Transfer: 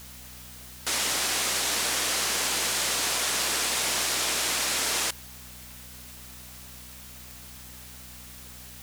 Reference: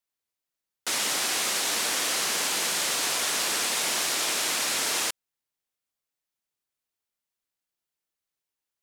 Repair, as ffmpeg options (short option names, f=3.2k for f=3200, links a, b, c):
-af "adeclick=t=4,bandreject=f=62.3:t=h:w=4,bandreject=f=124.6:t=h:w=4,bandreject=f=186.9:t=h:w=4,bandreject=f=249.2:t=h:w=4,afwtdn=0.005"